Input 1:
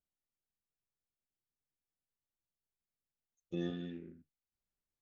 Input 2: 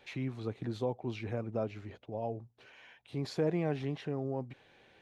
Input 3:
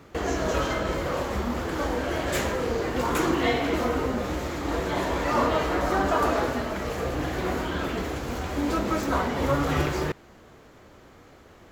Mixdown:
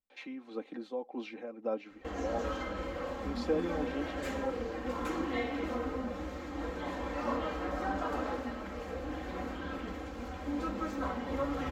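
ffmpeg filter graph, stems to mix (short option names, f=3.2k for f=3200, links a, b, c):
-filter_complex "[0:a]volume=-3dB[a];[1:a]highpass=f=260:w=0.5412,highpass=f=260:w=1.3066,tremolo=f=1.8:d=0.55,adelay=100,volume=0.5dB[b];[2:a]adelay=1900,volume=-12dB[c];[a][b][c]amix=inputs=3:normalize=0,lowpass=f=3.4k:p=1,aecho=1:1:3.8:0.68"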